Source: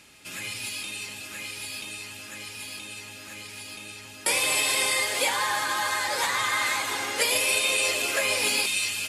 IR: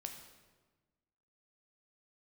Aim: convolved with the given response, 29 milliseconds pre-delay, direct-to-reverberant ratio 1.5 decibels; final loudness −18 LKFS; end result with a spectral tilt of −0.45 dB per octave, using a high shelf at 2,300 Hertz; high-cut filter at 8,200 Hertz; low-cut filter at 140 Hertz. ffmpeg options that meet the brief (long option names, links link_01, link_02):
-filter_complex "[0:a]highpass=140,lowpass=8200,highshelf=frequency=2300:gain=-5.5,asplit=2[link_01][link_02];[1:a]atrim=start_sample=2205,adelay=29[link_03];[link_02][link_03]afir=irnorm=-1:irlink=0,volume=1.5dB[link_04];[link_01][link_04]amix=inputs=2:normalize=0,volume=8dB"